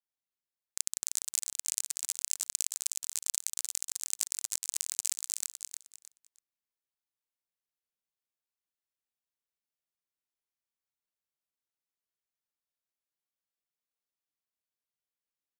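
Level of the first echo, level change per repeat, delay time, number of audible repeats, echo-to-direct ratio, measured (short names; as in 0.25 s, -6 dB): -6.5 dB, -13.0 dB, 0.309 s, 3, -6.5 dB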